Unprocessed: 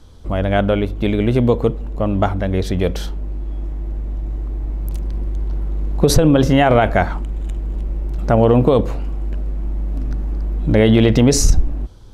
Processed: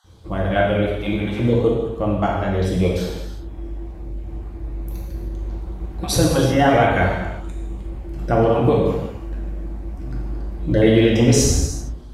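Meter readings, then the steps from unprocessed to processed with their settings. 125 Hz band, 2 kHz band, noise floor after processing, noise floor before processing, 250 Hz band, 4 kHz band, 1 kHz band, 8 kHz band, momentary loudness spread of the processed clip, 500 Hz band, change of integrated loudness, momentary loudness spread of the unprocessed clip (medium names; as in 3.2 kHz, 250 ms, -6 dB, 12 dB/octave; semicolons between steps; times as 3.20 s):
-3.0 dB, 0.0 dB, -34 dBFS, -26 dBFS, -3.0 dB, -1.0 dB, -1.0 dB, 0.0 dB, 18 LU, -2.0 dB, -1.0 dB, 14 LU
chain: random holes in the spectrogram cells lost 22%; high-pass 57 Hz; gated-style reverb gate 410 ms falling, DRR -4.5 dB; trim -5.5 dB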